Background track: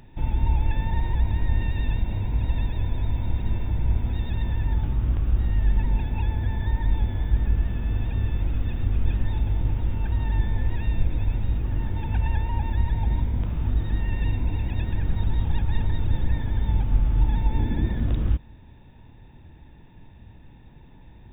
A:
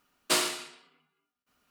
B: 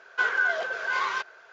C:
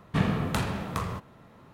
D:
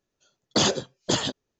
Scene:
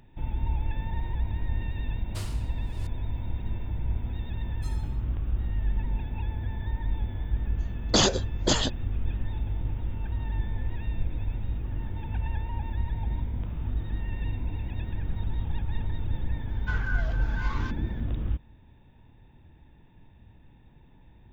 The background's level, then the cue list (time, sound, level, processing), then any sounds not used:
background track -6.5 dB
1.85 s: add A -17.5 dB + chunks repeated in reverse 340 ms, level -10.5 dB
4.32 s: add A -10.5 dB + inharmonic resonator 380 Hz, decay 0.31 s, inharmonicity 0.03
7.38 s: add D
16.49 s: add B -11 dB
not used: C

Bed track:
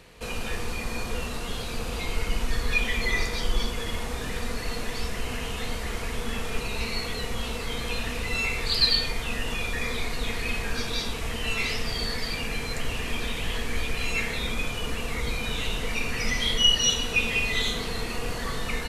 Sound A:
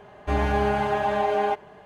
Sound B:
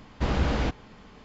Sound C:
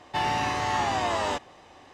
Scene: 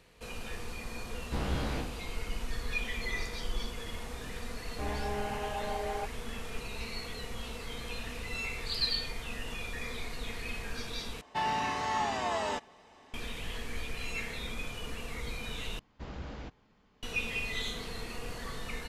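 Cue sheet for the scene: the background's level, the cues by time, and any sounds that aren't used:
bed track -9.5 dB
1.11 s: add B -9.5 dB + spectral sustain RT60 0.47 s
4.51 s: add A -13 dB
11.21 s: replace with C -6.5 dB + comb 4.6 ms, depth 46%
15.79 s: replace with B -17 dB

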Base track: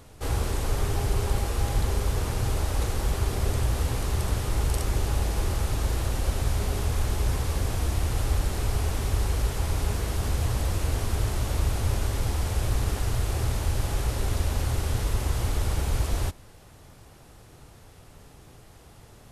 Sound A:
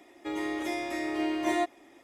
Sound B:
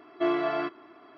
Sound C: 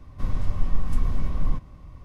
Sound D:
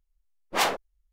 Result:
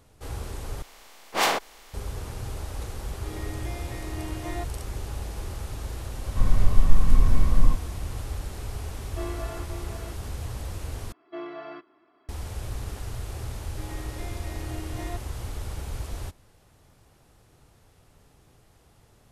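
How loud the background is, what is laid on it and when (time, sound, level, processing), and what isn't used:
base track -8 dB
0.82 s: replace with D -1 dB + spectral levelling over time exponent 0.4
2.99 s: add A -8.5 dB
6.17 s: add C -1 dB + harmonic-percussive split harmonic +7 dB
8.96 s: add B -10 dB + delay 527 ms -7 dB
11.12 s: replace with B -11 dB
13.52 s: add A -11 dB

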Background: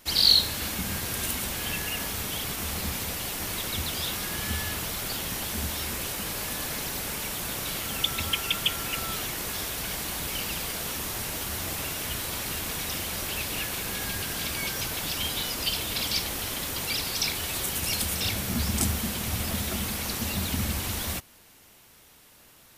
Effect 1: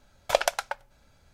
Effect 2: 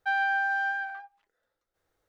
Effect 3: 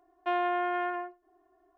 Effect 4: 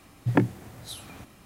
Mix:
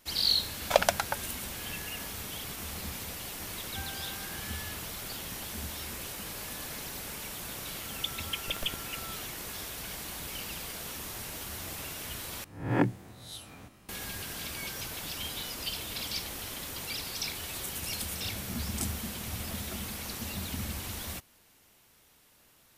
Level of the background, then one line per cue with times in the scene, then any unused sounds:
background -7.5 dB
0.41 s: add 1 -0.5 dB
3.69 s: add 2 -18 dB + reverb removal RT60 1 s
8.15 s: add 1 -1 dB + Schmitt trigger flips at -16 dBFS
12.44 s: replace with 4 -6.5 dB + reverse spectral sustain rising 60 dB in 0.53 s
not used: 3

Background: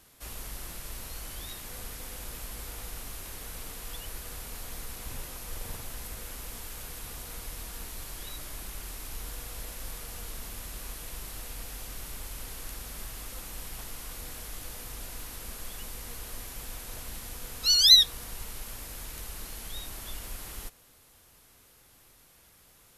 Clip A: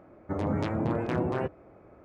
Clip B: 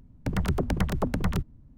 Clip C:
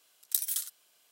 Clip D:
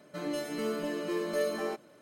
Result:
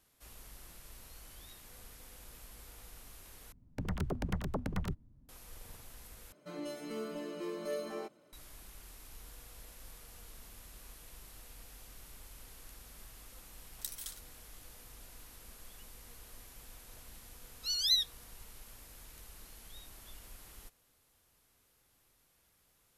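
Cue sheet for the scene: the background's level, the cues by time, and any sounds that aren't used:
background -12.5 dB
3.52 s: replace with B -9.5 dB
6.32 s: replace with D -7.5 dB + band-stop 1.7 kHz, Q 9.4
13.50 s: add C -5.5 dB + treble shelf 7.5 kHz -11 dB
not used: A

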